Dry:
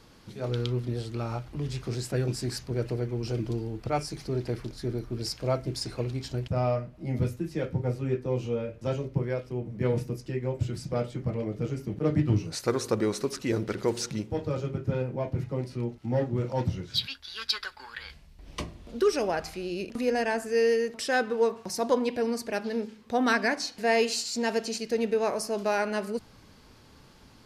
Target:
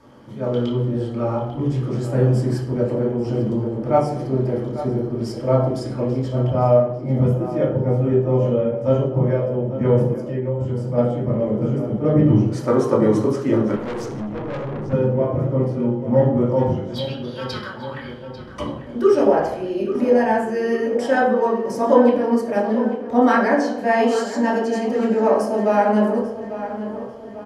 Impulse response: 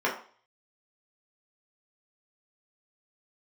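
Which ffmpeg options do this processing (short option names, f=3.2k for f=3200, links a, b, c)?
-filter_complex "[0:a]asplit=2[a][b];[b]adelay=845,lowpass=f=3.6k:p=1,volume=-12dB,asplit=2[c][d];[d]adelay=845,lowpass=f=3.6k:p=1,volume=0.54,asplit=2[e][f];[f]adelay=845,lowpass=f=3.6k:p=1,volume=0.54,asplit=2[g][h];[h]adelay=845,lowpass=f=3.6k:p=1,volume=0.54,asplit=2[i][j];[j]adelay=845,lowpass=f=3.6k:p=1,volume=0.54,asplit=2[k][l];[l]adelay=845,lowpass=f=3.6k:p=1,volume=0.54[m];[a][c][e][g][i][k][m]amix=inputs=7:normalize=0[n];[1:a]atrim=start_sample=2205,asetrate=24696,aresample=44100[o];[n][o]afir=irnorm=-1:irlink=0,asettb=1/sr,asplit=3[p][q][r];[p]atrim=end=10.134[s];[q]atrim=start=10.13:end=10.98,asetpts=PTS-STARTPTS,afade=t=in:d=0.004:c=qsin,afade=t=out:st=0.846:d=0.004:c=qsin,acompressor=threshold=-16dB:ratio=2[t];[r]atrim=start=10.976[u];[s][t]acrossfade=d=0.004:c1=hsin:c2=qsin[v];[v][u]acrossfade=d=0.004:c1=qsin:c2=hsin,asettb=1/sr,asplit=3[w][x][y];[w]atrim=end=13.764[z];[x]atrim=start=13.76:end=14.93,asetpts=PTS-STARTPTS,afade=t=in:d=0.004:c=qsin,afade=t=out:st=1.166:d=0.004:c=qsin,aeval=exprs='(tanh(7.94*val(0)+0.25)-tanh(0.25))/7.94':c=same[aa];[y]atrim=start=14.926[ab];[z][aa]acrossfade=d=0.004:c1=hsin:c2=qsin[ac];[ac][ab]acrossfade=d=0.004:c1=qsin:c2=hsin,volume=-7dB"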